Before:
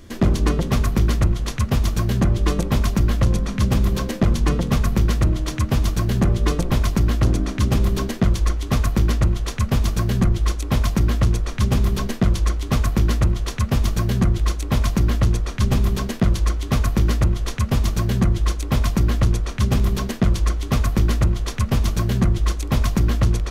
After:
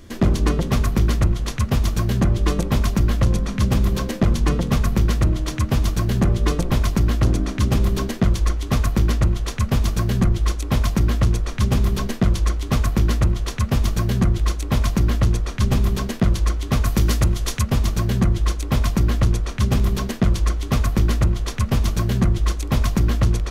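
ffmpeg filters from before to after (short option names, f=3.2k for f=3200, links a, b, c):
-filter_complex "[0:a]asettb=1/sr,asplit=3[a][b][c];[a]atrim=end=16.864[d];[b]atrim=start=16.86:end=17.63,asetpts=PTS-STARTPTS,afade=t=in:d=0.004:c=qsin,afade=t=out:st=0.766:d=0.004:c=qsin,highshelf=f=3.9k:g=9[e];[c]atrim=start=17.626[f];[d][e]acrossfade=d=0.004:c1=hsin:c2=qsin[g];[g][f]acrossfade=d=0.004:c1=qsin:c2=hsin"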